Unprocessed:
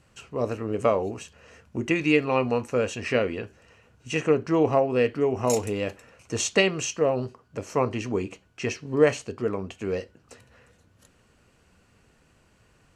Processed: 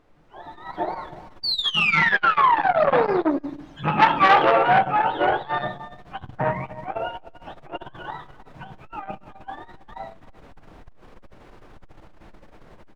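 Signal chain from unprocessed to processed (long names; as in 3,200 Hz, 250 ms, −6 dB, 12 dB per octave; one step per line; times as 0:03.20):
frequency axis turned over on the octave scale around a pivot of 620 Hz
source passing by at 0:04.19, 24 m/s, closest 8 metres
parametric band 300 Hz +3 dB 1.4 octaves
background noise brown −53 dBFS
single-tap delay 299 ms −15.5 dB
automatic gain control gain up to 15 dB
sound drawn into the spectrogram fall, 0:01.43–0:03.37, 270–4,700 Hz −18 dBFS
rectangular room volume 100 cubic metres, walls mixed, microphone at 0.41 metres
mid-hump overdrive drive 11 dB, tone 1,300 Hz, clips at −0.5 dBFS
low-shelf EQ 140 Hz −5.5 dB
saturating transformer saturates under 1,300 Hz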